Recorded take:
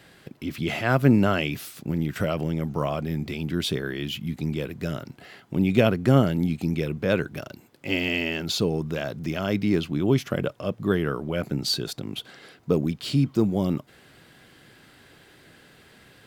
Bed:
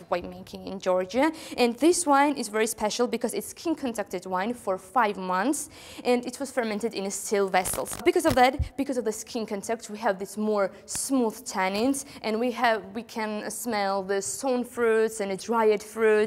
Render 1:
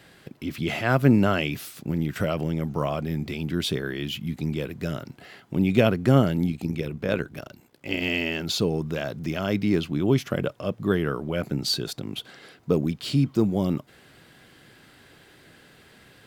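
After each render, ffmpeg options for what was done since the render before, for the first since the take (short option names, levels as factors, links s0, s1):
-filter_complex "[0:a]asettb=1/sr,asplit=3[s0][s1][s2];[s0]atrim=end=6.504[s3];[s1]atrim=start=6.5:end=8.02,asetpts=PTS-STARTPTS,afade=t=in:d=0.004:c=qsin,afade=t=out:st=1.516:d=0.004:c=qsin,tremolo=f=61:d=0.621[s4];[s2]atrim=start=8.016[s5];[s3][s4]acrossfade=d=0.004:c1=hsin:c2=qsin[s6];[s6][s5]acrossfade=d=0.004:c1=qsin:c2=hsin"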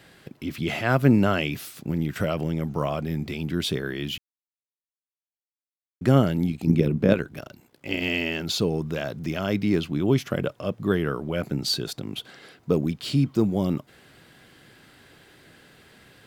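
-filter_complex "[0:a]asettb=1/sr,asplit=3[s0][s1][s2];[s0]atrim=end=6.674[s3];[s1]atrim=start=6.67:end=7.14,asetpts=PTS-STARTPTS,afade=t=in:d=0.004:c=qsin,afade=t=out:st=0.466:d=0.004:c=qsin,equalizer=f=220:t=o:w=2.6:g=11[s4];[s2]atrim=start=7.136[s5];[s3][s4]acrossfade=d=0.004:c1=hsin:c2=qsin[s6];[s6][s5]acrossfade=d=0.004:c1=qsin:c2=hsin,asplit=3[s7][s8][s9];[s7]atrim=end=4.18,asetpts=PTS-STARTPTS,afade=t=out:st=4.176:d=0.004:c=hsin[s10];[s8]atrim=start=4.18:end=6.01,asetpts=PTS-STARTPTS,volume=0[s11];[s9]atrim=start=6.01,asetpts=PTS-STARTPTS,afade=t=in:d=0.004:c=hsin[s12];[s10][s11][s12]concat=n=3:v=0:a=1"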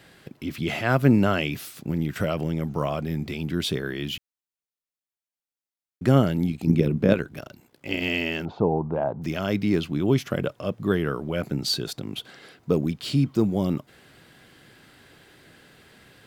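-filter_complex "[0:a]asettb=1/sr,asplit=3[s0][s1][s2];[s0]atrim=end=8.454[s3];[s1]atrim=start=8.45:end=9.22,asetpts=PTS-STARTPTS,afade=t=in:d=0.004:c=qsin,afade=t=out:st=0.766:d=0.004:c=qsin,lowpass=f=860:t=q:w=4.8[s4];[s2]atrim=start=9.216[s5];[s3][s4]acrossfade=d=0.004:c1=hsin:c2=qsin[s6];[s6][s5]acrossfade=d=0.004:c1=qsin:c2=hsin"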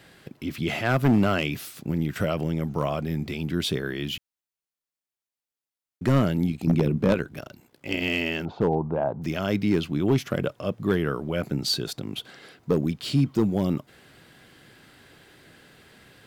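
-af "asoftclip=type=hard:threshold=0.211"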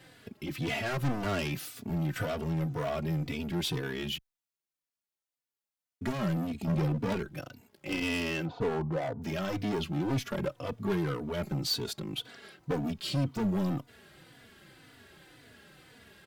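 -filter_complex "[0:a]asoftclip=type=hard:threshold=0.0631,asplit=2[s0][s1];[s1]adelay=3.4,afreqshift=-1.9[s2];[s0][s2]amix=inputs=2:normalize=1"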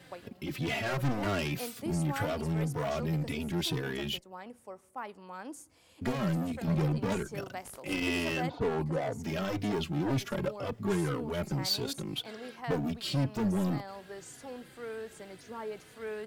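-filter_complex "[1:a]volume=0.126[s0];[0:a][s0]amix=inputs=2:normalize=0"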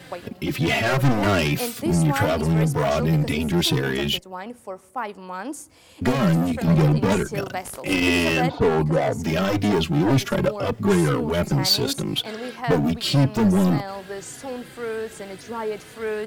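-af "volume=3.76"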